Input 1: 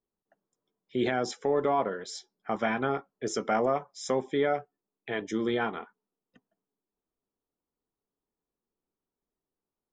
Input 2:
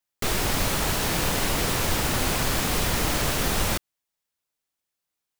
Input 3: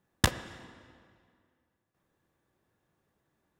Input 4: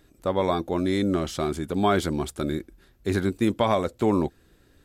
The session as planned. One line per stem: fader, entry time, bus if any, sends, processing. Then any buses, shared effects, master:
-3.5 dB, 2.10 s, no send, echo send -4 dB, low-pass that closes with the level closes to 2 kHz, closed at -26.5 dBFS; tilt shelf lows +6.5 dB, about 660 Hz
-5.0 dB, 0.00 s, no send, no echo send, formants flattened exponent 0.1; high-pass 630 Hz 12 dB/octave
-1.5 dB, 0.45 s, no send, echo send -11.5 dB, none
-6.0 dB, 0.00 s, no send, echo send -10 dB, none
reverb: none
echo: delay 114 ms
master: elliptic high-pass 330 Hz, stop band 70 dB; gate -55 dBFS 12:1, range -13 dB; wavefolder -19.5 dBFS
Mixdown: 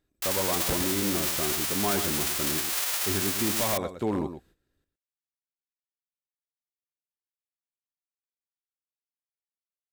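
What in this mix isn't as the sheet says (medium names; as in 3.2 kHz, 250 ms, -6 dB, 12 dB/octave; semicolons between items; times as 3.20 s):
stem 1: muted; master: missing elliptic high-pass 330 Hz, stop band 70 dB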